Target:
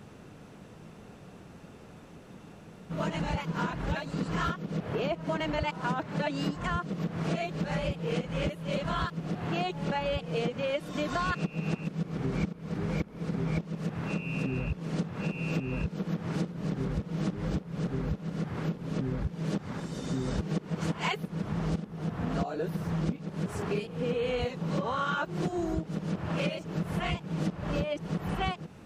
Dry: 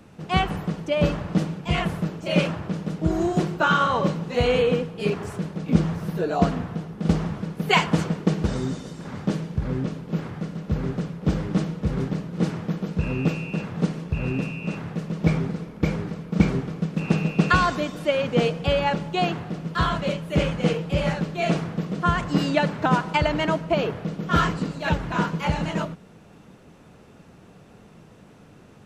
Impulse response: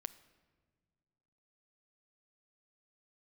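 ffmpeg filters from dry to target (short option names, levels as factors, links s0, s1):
-af "areverse,acompressor=threshold=0.0398:ratio=6"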